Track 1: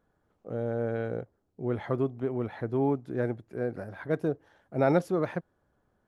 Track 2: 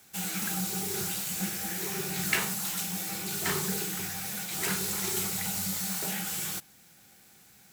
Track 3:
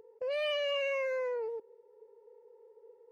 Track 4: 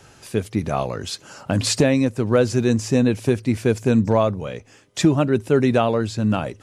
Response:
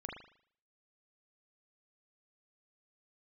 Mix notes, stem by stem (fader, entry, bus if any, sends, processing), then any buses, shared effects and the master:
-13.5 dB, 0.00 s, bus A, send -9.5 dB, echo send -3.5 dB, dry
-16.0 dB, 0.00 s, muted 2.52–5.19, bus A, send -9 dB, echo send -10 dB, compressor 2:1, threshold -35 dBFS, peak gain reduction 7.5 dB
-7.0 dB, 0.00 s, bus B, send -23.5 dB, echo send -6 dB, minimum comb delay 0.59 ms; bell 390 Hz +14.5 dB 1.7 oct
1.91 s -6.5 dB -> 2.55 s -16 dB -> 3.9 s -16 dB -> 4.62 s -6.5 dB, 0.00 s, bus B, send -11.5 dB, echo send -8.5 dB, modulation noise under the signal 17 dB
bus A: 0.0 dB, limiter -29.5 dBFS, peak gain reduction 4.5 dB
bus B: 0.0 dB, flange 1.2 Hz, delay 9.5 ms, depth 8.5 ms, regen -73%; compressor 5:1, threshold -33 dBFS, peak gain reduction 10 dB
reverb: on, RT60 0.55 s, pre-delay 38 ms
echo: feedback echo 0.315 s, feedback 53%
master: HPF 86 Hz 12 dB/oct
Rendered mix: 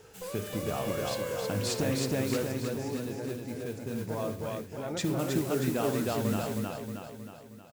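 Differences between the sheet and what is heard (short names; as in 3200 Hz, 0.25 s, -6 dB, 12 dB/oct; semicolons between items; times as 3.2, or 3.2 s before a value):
stem 2: missing compressor 2:1, threshold -35 dBFS, peak gain reduction 7.5 dB; master: missing HPF 86 Hz 12 dB/oct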